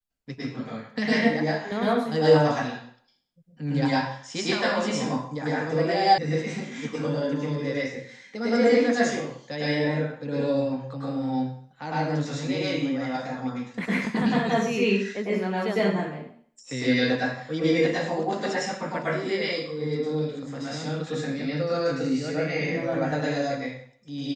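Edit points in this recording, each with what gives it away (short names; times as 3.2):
6.18 sound cut off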